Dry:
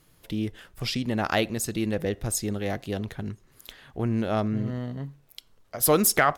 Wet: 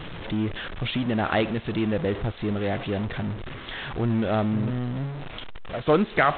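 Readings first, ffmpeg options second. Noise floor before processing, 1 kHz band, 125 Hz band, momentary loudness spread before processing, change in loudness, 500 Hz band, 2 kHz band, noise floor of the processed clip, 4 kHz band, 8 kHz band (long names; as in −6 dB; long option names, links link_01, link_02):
−61 dBFS, +1.5 dB, +3.0 dB, 16 LU, +0.5 dB, +2.0 dB, +1.5 dB, −40 dBFS, −0.5 dB, below −40 dB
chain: -af "aeval=exprs='val(0)+0.5*0.0376*sgn(val(0))':channel_layout=same" -ar 8000 -c:a adpcm_g726 -b:a 24k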